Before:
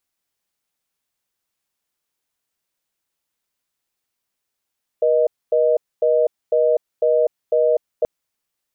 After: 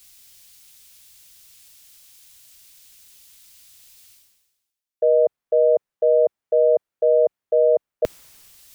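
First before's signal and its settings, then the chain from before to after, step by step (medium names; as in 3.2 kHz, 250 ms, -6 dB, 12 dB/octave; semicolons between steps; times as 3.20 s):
call progress tone reorder tone, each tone -16 dBFS 3.03 s
reverse; upward compressor, threshold -25 dBFS; reverse; three bands expanded up and down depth 40%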